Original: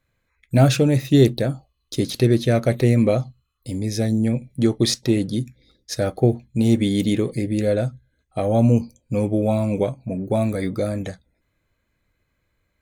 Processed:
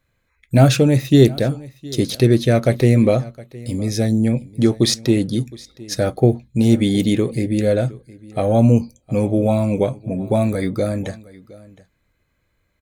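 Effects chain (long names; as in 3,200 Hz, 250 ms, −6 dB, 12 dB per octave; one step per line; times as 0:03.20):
single-tap delay 714 ms −21 dB
level +3 dB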